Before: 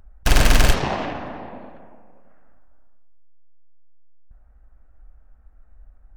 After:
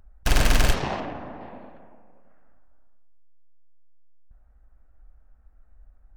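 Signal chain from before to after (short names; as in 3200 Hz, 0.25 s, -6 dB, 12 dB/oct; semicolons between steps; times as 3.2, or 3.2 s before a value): 1–1.41 high shelf 2100 Hz -9 dB; gain -4.5 dB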